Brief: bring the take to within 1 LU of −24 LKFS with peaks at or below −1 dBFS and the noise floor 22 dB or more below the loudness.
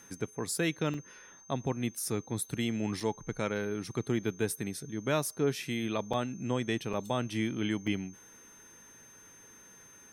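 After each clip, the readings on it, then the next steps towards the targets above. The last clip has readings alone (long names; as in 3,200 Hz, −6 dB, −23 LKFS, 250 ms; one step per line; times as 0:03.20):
number of dropouts 5; longest dropout 4.3 ms; interfering tone 6,300 Hz; level of the tone −54 dBFS; integrated loudness −33.5 LKFS; sample peak −17.5 dBFS; target loudness −24.0 LKFS
→ repair the gap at 0:00.94/0:03.00/0:06.13/0:06.93/0:07.87, 4.3 ms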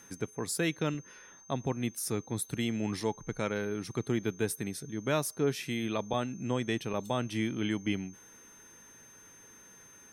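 number of dropouts 0; interfering tone 6,300 Hz; level of the tone −54 dBFS
→ notch filter 6,300 Hz, Q 30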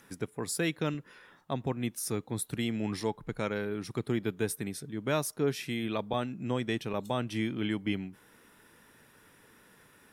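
interfering tone none found; integrated loudness −33.5 LKFS; sample peak −17.5 dBFS; target loudness −24.0 LKFS
→ level +9.5 dB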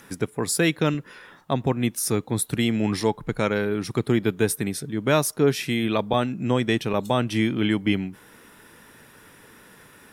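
integrated loudness −24.0 LKFS; sample peak −8.0 dBFS; background noise floor −51 dBFS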